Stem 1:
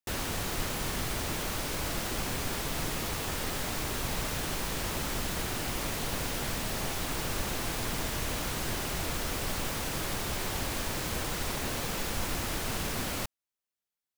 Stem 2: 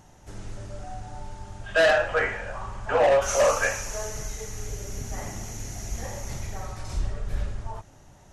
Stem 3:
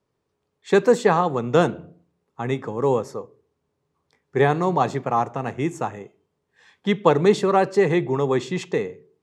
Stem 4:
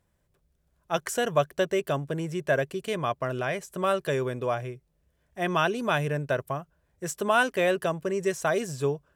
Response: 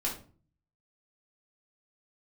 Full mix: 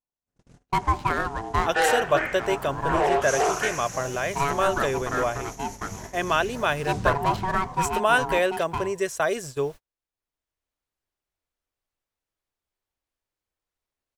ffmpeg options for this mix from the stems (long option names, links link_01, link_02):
-filter_complex "[0:a]adelay=2350,volume=-12.5dB[link_01];[1:a]aeval=exprs='val(0)*sin(2*PI*150*n/s)':channel_layout=same,volume=1dB[link_02];[2:a]adynamicsmooth=sensitivity=7:basefreq=770,aeval=exprs='val(0)*sin(2*PI*560*n/s)':channel_layout=same,volume=-2.5dB,asplit=2[link_03][link_04];[3:a]adelay=750,volume=2.5dB[link_05];[link_04]apad=whole_len=733084[link_06];[link_01][link_06]sidechaincompress=threshold=-42dB:ratio=8:attack=21:release=1360[link_07];[link_07][link_02][link_03][link_05]amix=inputs=4:normalize=0,agate=range=-43dB:threshold=-33dB:ratio=16:detection=peak,equalizer=frequency=170:width_type=o:width=1.5:gain=-8"